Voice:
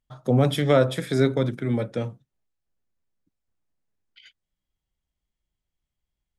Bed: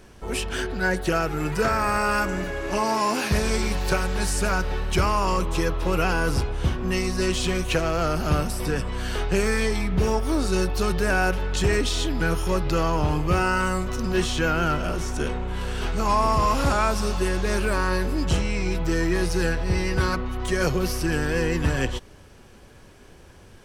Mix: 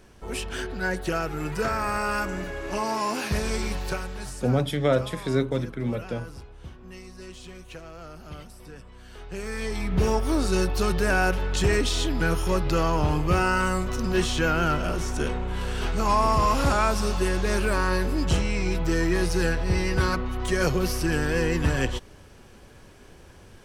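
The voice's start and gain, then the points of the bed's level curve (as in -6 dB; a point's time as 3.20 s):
4.15 s, -3.5 dB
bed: 3.74 s -4 dB
4.72 s -18.5 dB
9.08 s -18.5 dB
9.98 s -0.5 dB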